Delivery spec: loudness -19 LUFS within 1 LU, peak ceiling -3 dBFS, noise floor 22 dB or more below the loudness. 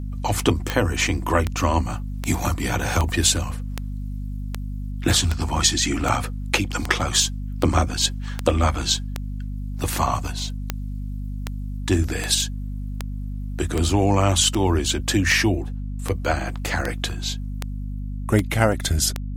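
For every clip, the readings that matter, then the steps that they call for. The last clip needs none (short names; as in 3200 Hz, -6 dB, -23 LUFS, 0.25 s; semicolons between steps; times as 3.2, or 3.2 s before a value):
clicks 25; hum 50 Hz; harmonics up to 250 Hz; hum level -26 dBFS; loudness -23.0 LUFS; peak -1.5 dBFS; loudness target -19.0 LUFS
-> de-click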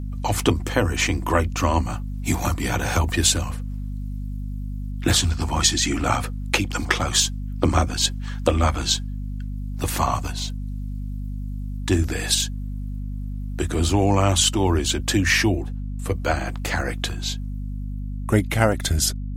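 clicks 0; hum 50 Hz; harmonics up to 250 Hz; hum level -26 dBFS
-> notches 50/100/150/200/250 Hz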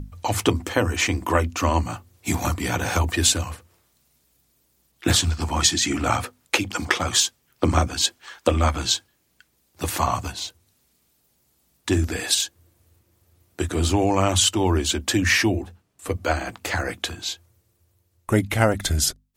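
hum none; loudness -22.5 LUFS; peak -2.0 dBFS; loudness target -19.0 LUFS
-> gain +3.5 dB; limiter -3 dBFS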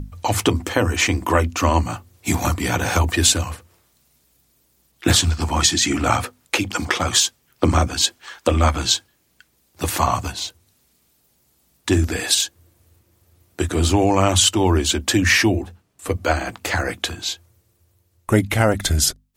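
loudness -19.5 LUFS; peak -3.0 dBFS; noise floor -64 dBFS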